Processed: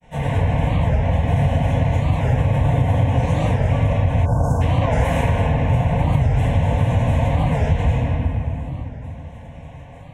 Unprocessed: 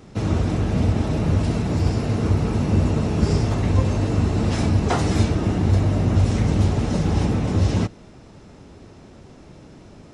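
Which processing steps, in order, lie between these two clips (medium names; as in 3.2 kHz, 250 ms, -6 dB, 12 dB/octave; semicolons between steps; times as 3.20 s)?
treble shelf 6.9 kHz -12 dB; granulator, pitch spread up and down by 7 st; bass shelf 330 Hz -7.5 dB; static phaser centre 1.3 kHz, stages 6; comb of notches 200 Hz; simulated room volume 130 m³, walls hard, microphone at 0.94 m; compression, threshold -17 dBFS, peak gain reduction 5.5 dB; spectral selection erased 4.26–4.61 s, 1.6–4.5 kHz; warped record 45 rpm, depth 160 cents; trim +4.5 dB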